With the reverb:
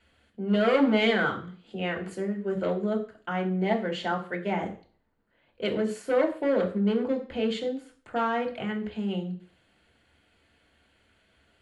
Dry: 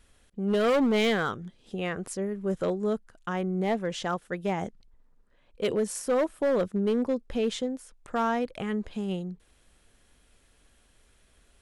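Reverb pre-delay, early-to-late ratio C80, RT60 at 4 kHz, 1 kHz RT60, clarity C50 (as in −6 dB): 3 ms, 16.0 dB, 0.45 s, 0.45 s, 12.0 dB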